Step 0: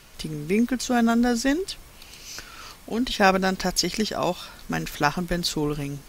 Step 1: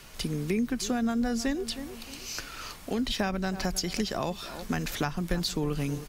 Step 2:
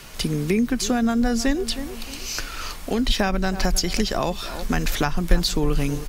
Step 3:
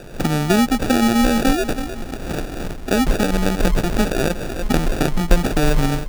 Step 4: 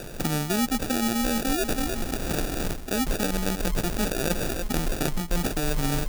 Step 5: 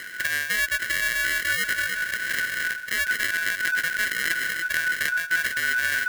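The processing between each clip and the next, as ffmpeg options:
-filter_complex "[0:a]asplit=2[a][b];[b]adelay=313,lowpass=f=1.1k:p=1,volume=-17.5dB,asplit=2[c][d];[d]adelay=313,lowpass=f=1.1k:p=1,volume=0.35,asplit=2[e][f];[f]adelay=313,lowpass=f=1.1k:p=1,volume=0.35[g];[a][c][e][g]amix=inputs=4:normalize=0,acrossover=split=150[h][i];[i]acompressor=threshold=-28dB:ratio=10[j];[h][j]amix=inputs=2:normalize=0,volume=1dB"
-af "asubboost=boost=3.5:cutoff=63,volume=7.5dB"
-filter_complex "[0:a]asplit=2[a][b];[b]alimiter=limit=-9.5dB:level=0:latency=1:release=355,volume=-2.5dB[c];[a][c]amix=inputs=2:normalize=0,acrusher=samples=42:mix=1:aa=0.000001"
-af "highshelf=f=5k:g=10.5,areverse,acompressor=threshold=-22dB:ratio=6,areverse"
-af "afftfilt=real='real(if(lt(b,272),68*(eq(floor(b/68),0)*3+eq(floor(b/68),1)*0+eq(floor(b/68),2)*1+eq(floor(b/68),3)*2)+mod(b,68),b),0)':imag='imag(if(lt(b,272),68*(eq(floor(b/68),0)*3+eq(floor(b/68),1)*0+eq(floor(b/68),2)*1+eq(floor(b/68),3)*2)+mod(b,68),b),0)':win_size=2048:overlap=0.75"

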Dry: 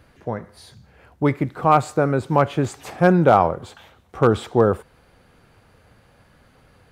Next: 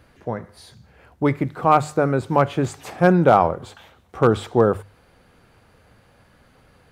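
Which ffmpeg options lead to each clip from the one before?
-af "bandreject=f=50:t=h:w=6,bandreject=f=100:t=h:w=6,bandreject=f=150:t=h:w=6"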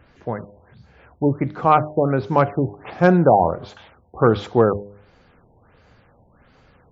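-af "bandreject=f=101.5:t=h:w=4,bandreject=f=203:t=h:w=4,bandreject=f=304.5:t=h:w=4,bandreject=f=406:t=h:w=4,bandreject=f=507.5:t=h:w=4,bandreject=f=609:t=h:w=4,bandreject=f=710.5:t=h:w=4,afftfilt=real='re*lt(b*sr/1024,940*pow(7600/940,0.5+0.5*sin(2*PI*1.4*pts/sr)))':imag='im*lt(b*sr/1024,940*pow(7600/940,0.5+0.5*sin(2*PI*1.4*pts/sr)))':win_size=1024:overlap=0.75,volume=1dB"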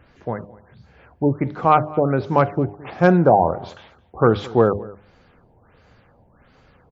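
-af "aecho=1:1:218:0.0841"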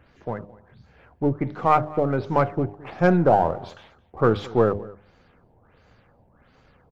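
-af "aeval=exprs='if(lt(val(0),0),0.708*val(0),val(0))':c=same,volume=-2dB"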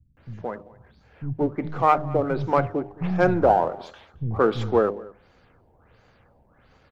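-filter_complex "[0:a]acrossover=split=190[a][b];[b]adelay=170[c];[a][c]amix=inputs=2:normalize=0"

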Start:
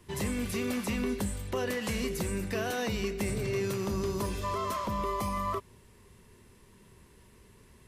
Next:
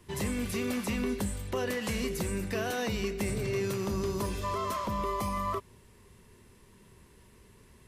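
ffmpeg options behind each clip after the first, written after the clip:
-af anull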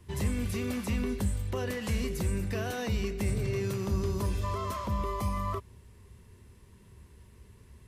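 -af "equalizer=f=73:w=0.82:g=12,volume=-3dB"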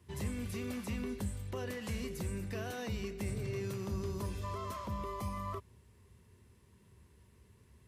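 -af "highpass=67,volume=-6.5dB"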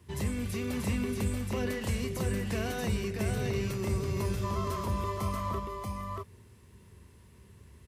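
-af "aecho=1:1:634:0.668,volume=5.5dB"

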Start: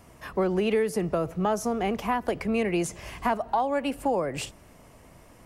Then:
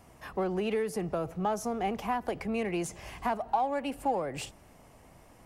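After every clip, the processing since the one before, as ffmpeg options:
-filter_complex "[0:a]asplit=2[a][b];[b]asoftclip=type=tanh:threshold=-32.5dB,volume=-8dB[c];[a][c]amix=inputs=2:normalize=0,equalizer=f=790:t=o:w=0.22:g=6.5,volume=-7dB"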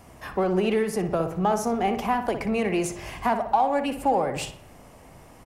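-filter_complex "[0:a]asplit=2[a][b];[b]adelay=60,lowpass=f=3k:p=1,volume=-8.5dB,asplit=2[c][d];[d]adelay=60,lowpass=f=3k:p=1,volume=0.52,asplit=2[e][f];[f]adelay=60,lowpass=f=3k:p=1,volume=0.52,asplit=2[g][h];[h]adelay=60,lowpass=f=3k:p=1,volume=0.52,asplit=2[i][j];[j]adelay=60,lowpass=f=3k:p=1,volume=0.52,asplit=2[k][l];[l]adelay=60,lowpass=f=3k:p=1,volume=0.52[m];[a][c][e][g][i][k][m]amix=inputs=7:normalize=0,volume=6.5dB"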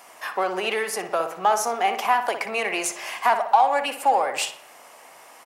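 -af "highpass=810,volume=7.5dB"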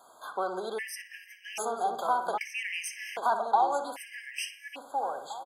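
-filter_complex "[0:a]asplit=2[a][b];[b]adelay=885,lowpass=f=3.4k:p=1,volume=-5dB,asplit=2[c][d];[d]adelay=885,lowpass=f=3.4k:p=1,volume=0.27,asplit=2[e][f];[f]adelay=885,lowpass=f=3.4k:p=1,volume=0.27,asplit=2[g][h];[h]adelay=885,lowpass=f=3.4k:p=1,volume=0.27[i];[a][c][e][g][i]amix=inputs=5:normalize=0,afftfilt=real='re*gt(sin(2*PI*0.63*pts/sr)*(1-2*mod(floor(b*sr/1024/1600),2)),0)':imag='im*gt(sin(2*PI*0.63*pts/sr)*(1-2*mod(floor(b*sr/1024/1600),2)),0)':win_size=1024:overlap=0.75,volume=-7dB"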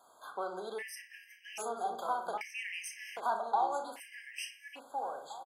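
-filter_complex "[0:a]asplit=2[a][b];[b]adelay=34,volume=-9.5dB[c];[a][c]amix=inputs=2:normalize=0,volume=-6.5dB"

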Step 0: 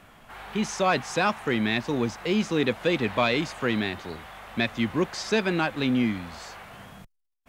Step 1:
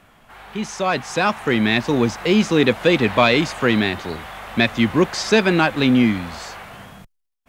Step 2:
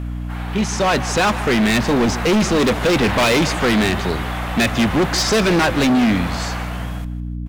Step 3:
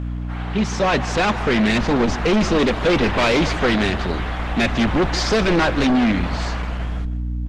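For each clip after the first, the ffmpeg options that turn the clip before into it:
-af "dynaudnorm=f=370:g=7:m=11dB"
-af "aeval=exprs='val(0)+0.0282*(sin(2*PI*60*n/s)+sin(2*PI*2*60*n/s)/2+sin(2*PI*3*60*n/s)/3+sin(2*PI*4*60*n/s)/4+sin(2*PI*5*60*n/s)/5)':c=same,volume=20dB,asoftclip=hard,volume=-20dB,aecho=1:1:156|312|468:0.15|0.0449|0.0135,volume=7dB"
-af "lowpass=5.2k,asubboost=boost=3.5:cutoff=51" -ar 48000 -c:a libopus -b:a 16k

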